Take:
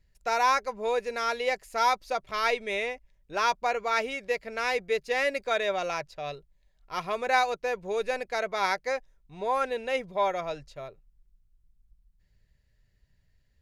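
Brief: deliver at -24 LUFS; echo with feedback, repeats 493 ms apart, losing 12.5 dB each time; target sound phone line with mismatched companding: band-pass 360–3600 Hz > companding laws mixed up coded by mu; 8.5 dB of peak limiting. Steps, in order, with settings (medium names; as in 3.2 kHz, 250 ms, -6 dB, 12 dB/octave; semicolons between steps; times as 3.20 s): peak limiter -20.5 dBFS; band-pass 360–3600 Hz; feedback delay 493 ms, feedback 24%, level -12.5 dB; companding laws mixed up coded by mu; trim +7 dB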